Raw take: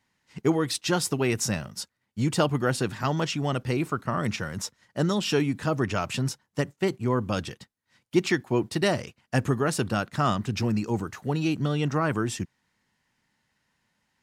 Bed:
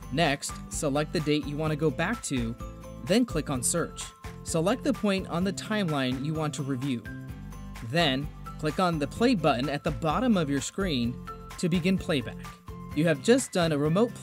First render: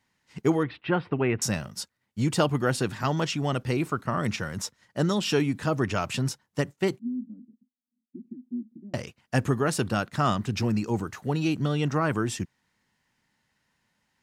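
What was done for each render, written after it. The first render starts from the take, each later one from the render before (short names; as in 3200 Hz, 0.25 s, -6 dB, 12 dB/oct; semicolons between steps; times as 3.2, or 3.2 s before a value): 0.63–1.42 inverse Chebyshev low-pass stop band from 6400 Hz, stop band 50 dB; 6.99–8.94 Butterworth band-pass 240 Hz, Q 6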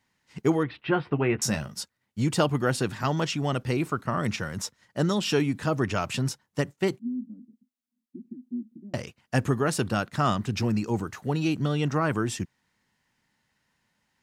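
0.77–1.74 doubler 14 ms -8 dB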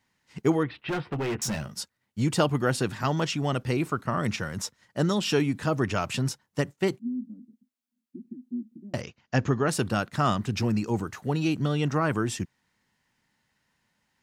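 0.81–1.68 hard clip -26 dBFS; 9.01–9.69 steep low-pass 6900 Hz 72 dB/oct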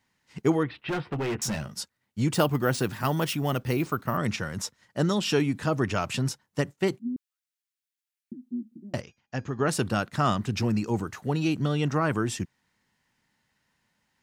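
2.34–4.17 careless resampling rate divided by 3×, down none, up hold; 7.16–8.32 steep high-pass 1400 Hz; 9–9.59 resonator 820 Hz, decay 0.36 s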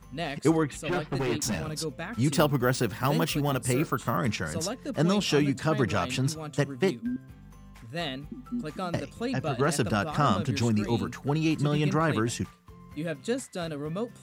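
add bed -8.5 dB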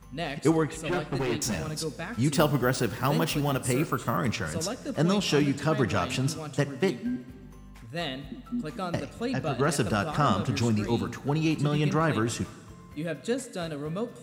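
plate-style reverb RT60 1.7 s, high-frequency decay 0.9×, DRR 13 dB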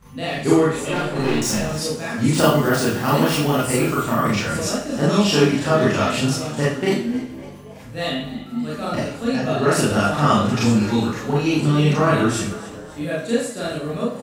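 frequency-shifting echo 0.278 s, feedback 55%, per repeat +94 Hz, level -18 dB; Schroeder reverb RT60 0.43 s, combs from 27 ms, DRR -7.5 dB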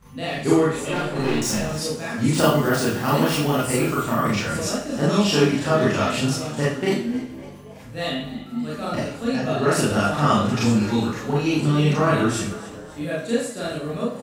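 gain -2 dB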